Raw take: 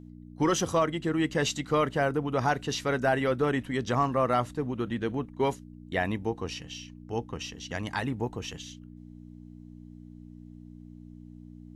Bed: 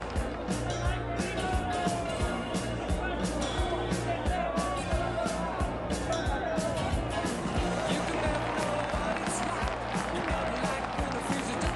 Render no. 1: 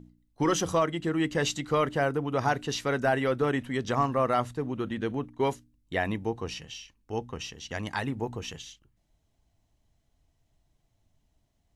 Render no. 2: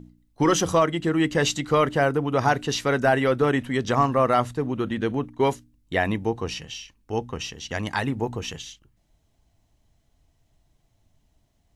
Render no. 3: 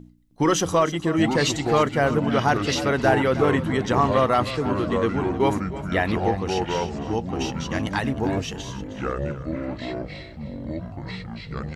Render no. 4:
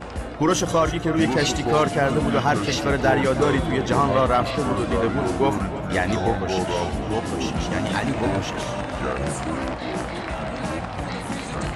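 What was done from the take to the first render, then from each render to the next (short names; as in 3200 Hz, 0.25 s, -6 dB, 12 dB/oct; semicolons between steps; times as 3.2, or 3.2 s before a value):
de-hum 60 Hz, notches 5
gain +5.5 dB
echoes that change speed 0.611 s, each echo -6 st, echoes 3, each echo -6 dB; feedback echo 0.311 s, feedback 35%, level -15 dB
add bed +1 dB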